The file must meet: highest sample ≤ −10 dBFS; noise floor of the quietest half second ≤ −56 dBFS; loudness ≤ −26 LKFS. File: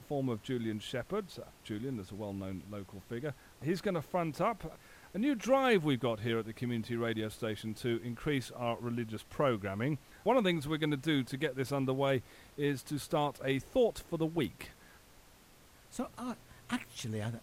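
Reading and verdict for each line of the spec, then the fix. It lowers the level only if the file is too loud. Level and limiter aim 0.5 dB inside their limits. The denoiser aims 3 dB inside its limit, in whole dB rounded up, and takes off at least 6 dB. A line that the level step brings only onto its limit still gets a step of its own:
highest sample −17.0 dBFS: in spec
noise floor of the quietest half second −60 dBFS: in spec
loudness −35.0 LKFS: in spec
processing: no processing needed

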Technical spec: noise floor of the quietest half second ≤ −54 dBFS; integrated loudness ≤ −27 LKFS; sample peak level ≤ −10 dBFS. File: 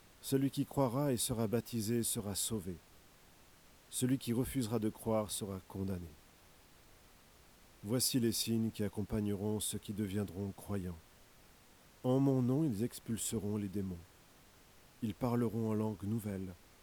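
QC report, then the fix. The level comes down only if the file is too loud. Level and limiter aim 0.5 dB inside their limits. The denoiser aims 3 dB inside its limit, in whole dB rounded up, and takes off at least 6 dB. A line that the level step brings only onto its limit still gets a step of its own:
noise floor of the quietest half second −63 dBFS: in spec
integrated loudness −36.5 LKFS: in spec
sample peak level −19.0 dBFS: in spec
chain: no processing needed

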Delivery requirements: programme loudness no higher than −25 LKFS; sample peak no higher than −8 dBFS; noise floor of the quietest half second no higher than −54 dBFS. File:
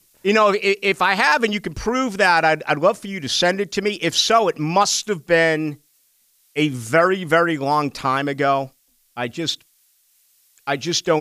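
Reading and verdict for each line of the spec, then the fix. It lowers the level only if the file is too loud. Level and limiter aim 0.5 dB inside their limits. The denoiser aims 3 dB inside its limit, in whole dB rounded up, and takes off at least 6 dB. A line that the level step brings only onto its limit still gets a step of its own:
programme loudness −19.0 LKFS: out of spec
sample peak −4.5 dBFS: out of spec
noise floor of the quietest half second −61 dBFS: in spec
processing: level −6.5 dB

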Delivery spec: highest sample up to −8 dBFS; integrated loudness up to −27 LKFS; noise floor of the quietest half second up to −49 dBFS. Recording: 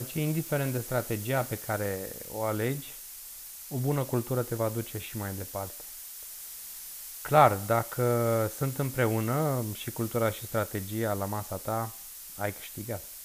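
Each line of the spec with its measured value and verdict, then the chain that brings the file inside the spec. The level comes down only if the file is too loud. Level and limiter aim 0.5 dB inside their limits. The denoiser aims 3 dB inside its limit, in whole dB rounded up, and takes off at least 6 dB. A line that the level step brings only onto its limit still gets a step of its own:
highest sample −6.5 dBFS: out of spec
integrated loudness −30.5 LKFS: in spec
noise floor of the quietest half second −44 dBFS: out of spec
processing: broadband denoise 8 dB, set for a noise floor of −44 dBFS
brickwall limiter −8.5 dBFS

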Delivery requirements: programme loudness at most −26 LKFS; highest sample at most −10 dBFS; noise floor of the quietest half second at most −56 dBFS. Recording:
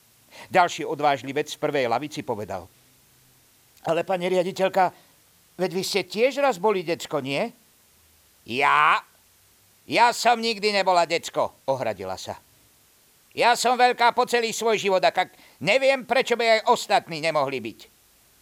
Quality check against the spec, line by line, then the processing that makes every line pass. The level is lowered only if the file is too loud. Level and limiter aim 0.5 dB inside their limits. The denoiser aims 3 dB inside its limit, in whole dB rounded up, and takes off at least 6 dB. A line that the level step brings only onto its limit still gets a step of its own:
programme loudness −23.0 LKFS: out of spec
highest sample −5.5 dBFS: out of spec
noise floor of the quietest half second −59 dBFS: in spec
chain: level −3.5 dB
brickwall limiter −10.5 dBFS

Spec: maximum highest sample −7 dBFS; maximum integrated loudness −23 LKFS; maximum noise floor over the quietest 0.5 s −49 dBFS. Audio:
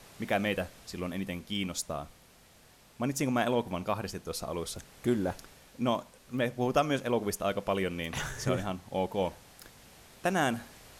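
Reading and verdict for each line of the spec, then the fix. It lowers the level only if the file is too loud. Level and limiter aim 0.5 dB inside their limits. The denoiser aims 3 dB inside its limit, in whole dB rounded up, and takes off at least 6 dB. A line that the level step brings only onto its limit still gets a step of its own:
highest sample −12.5 dBFS: in spec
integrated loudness −32.5 LKFS: in spec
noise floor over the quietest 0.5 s −59 dBFS: in spec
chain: no processing needed

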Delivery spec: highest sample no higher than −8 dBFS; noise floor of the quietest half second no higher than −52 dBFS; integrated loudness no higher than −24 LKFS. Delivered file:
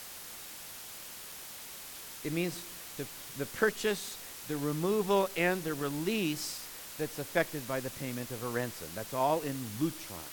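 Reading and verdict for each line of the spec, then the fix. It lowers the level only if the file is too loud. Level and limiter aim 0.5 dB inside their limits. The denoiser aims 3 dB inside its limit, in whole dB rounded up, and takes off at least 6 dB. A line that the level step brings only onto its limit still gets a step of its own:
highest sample −13.5 dBFS: in spec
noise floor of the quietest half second −46 dBFS: out of spec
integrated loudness −34.5 LKFS: in spec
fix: broadband denoise 9 dB, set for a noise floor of −46 dBFS

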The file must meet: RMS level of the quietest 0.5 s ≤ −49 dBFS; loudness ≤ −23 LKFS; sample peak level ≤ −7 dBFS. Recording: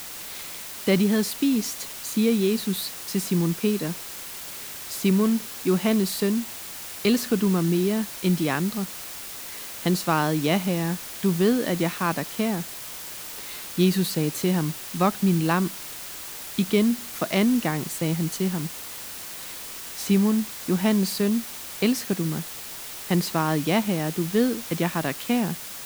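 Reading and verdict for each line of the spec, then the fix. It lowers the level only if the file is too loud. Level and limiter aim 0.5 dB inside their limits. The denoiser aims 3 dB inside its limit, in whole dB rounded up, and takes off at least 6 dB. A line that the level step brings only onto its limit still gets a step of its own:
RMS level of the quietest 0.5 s −37 dBFS: out of spec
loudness −25.0 LKFS: in spec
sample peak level −7.5 dBFS: in spec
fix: broadband denoise 15 dB, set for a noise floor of −37 dBFS

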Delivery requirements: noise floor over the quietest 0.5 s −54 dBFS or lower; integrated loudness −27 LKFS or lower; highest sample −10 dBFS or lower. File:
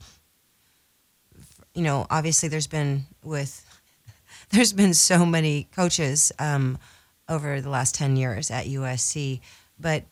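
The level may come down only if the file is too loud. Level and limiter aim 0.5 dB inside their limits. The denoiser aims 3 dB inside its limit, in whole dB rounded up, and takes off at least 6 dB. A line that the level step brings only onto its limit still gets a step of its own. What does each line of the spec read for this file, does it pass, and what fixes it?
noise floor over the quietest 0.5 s −65 dBFS: in spec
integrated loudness −23.0 LKFS: out of spec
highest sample −5.5 dBFS: out of spec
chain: level −4.5 dB
brickwall limiter −10.5 dBFS

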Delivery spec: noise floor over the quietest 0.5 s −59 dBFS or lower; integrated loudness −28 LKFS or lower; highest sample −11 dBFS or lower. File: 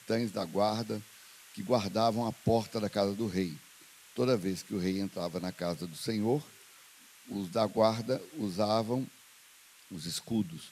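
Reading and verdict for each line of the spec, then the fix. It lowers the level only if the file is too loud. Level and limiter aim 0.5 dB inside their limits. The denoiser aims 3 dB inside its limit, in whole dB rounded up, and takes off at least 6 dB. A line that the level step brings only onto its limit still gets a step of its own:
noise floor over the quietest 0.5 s −58 dBFS: out of spec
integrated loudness −32.5 LKFS: in spec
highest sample −12.0 dBFS: in spec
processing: broadband denoise 6 dB, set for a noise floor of −58 dBFS

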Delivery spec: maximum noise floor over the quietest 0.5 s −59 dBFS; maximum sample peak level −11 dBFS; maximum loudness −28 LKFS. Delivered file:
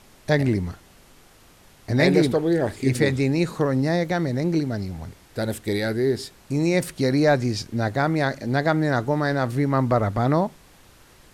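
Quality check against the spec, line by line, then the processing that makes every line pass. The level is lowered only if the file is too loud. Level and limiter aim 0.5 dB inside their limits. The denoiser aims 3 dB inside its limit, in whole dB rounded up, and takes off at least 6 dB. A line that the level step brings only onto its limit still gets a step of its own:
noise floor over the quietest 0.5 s −52 dBFS: out of spec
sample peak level −6.5 dBFS: out of spec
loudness −22.5 LKFS: out of spec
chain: broadband denoise 6 dB, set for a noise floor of −52 dBFS
level −6 dB

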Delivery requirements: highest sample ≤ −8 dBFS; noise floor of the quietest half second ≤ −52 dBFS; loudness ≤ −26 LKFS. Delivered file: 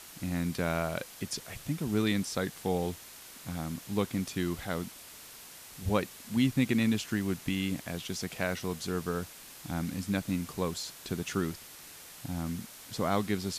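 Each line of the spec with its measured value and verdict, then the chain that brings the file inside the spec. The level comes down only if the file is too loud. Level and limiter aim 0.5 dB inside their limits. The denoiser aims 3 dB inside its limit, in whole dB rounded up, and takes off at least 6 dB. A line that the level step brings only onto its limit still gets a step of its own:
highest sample −14.5 dBFS: in spec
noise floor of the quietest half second −49 dBFS: out of spec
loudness −33.0 LKFS: in spec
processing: broadband denoise 6 dB, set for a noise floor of −49 dBFS

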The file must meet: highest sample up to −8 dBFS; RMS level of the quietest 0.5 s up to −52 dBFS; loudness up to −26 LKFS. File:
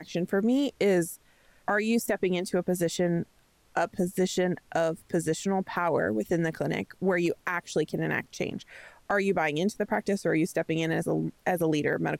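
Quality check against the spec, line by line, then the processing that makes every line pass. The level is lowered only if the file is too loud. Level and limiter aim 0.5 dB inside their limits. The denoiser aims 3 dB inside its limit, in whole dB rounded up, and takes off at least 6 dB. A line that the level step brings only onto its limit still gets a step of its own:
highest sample −16.0 dBFS: in spec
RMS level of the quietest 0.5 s −63 dBFS: in spec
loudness −28.5 LKFS: in spec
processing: no processing needed

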